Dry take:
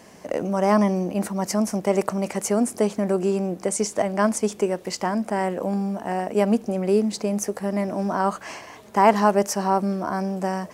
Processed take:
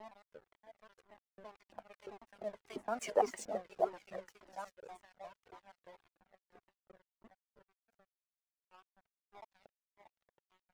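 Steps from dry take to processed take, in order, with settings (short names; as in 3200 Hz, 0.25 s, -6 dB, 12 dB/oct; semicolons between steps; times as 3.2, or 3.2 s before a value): slices in reverse order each 0.115 s, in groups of 7; Doppler pass-by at 3.15, 13 m/s, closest 2 m; LFO band-pass saw up 2.9 Hz 430–3700 Hz; delay with a stepping band-pass 0.315 s, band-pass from 240 Hz, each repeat 1.4 oct, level -2 dB; crossover distortion -57 dBFS; cascading flanger falling 1.8 Hz; gain +6.5 dB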